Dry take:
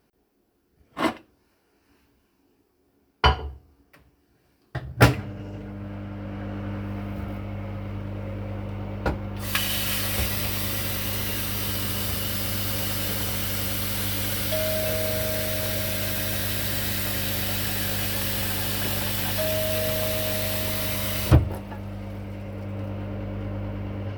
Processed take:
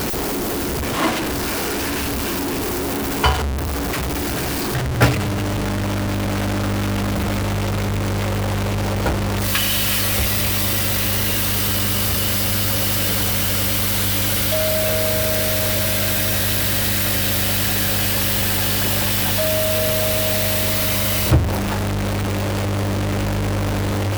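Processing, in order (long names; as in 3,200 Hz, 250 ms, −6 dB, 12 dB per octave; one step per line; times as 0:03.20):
converter with a step at zero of −15.5 dBFS
level −1 dB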